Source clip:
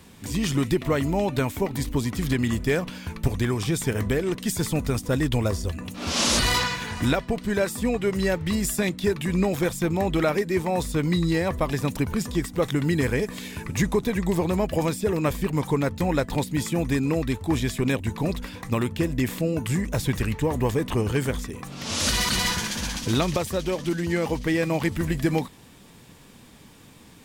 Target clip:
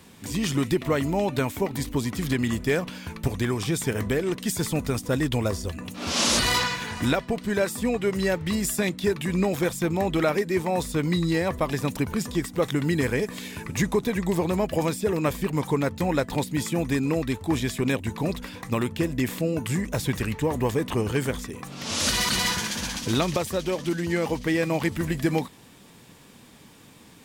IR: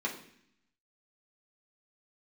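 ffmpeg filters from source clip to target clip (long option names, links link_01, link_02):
-af "lowshelf=frequency=67:gain=-10.5"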